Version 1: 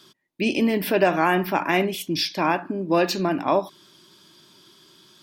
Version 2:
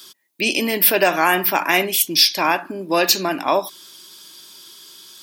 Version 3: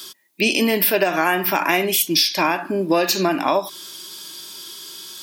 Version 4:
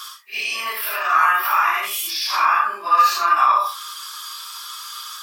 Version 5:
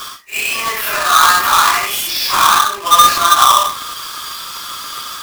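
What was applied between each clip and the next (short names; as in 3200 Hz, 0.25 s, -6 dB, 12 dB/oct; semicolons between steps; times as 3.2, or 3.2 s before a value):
RIAA curve recording; gain +4 dB
harmonic-percussive split percussive -8 dB; compressor 6:1, threshold -23 dBFS, peak gain reduction 10.5 dB; gain +8.5 dB
phase scrambler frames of 0.2 s; limiter -16.5 dBFS, peak gain reduction 10 dB; resonant high-pass 1200 Hz, resonance Q 15; gain +1 dB
half-waves squared off; gain +3 dB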